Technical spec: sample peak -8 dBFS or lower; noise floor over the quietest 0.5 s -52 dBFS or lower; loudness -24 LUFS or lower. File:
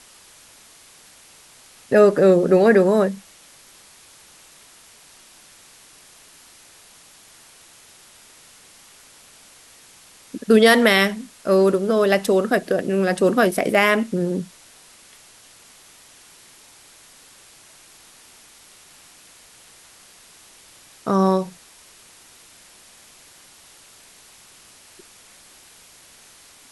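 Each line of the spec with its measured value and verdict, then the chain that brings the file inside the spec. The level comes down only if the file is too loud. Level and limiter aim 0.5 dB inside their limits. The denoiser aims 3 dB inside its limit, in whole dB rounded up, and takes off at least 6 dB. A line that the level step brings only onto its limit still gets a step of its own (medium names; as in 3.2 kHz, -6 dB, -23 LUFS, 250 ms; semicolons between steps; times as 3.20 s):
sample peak -3.5 dBFS: fail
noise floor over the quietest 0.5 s -49 dBFS: fail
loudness -17.5 LUFS: fail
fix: trim -7 dB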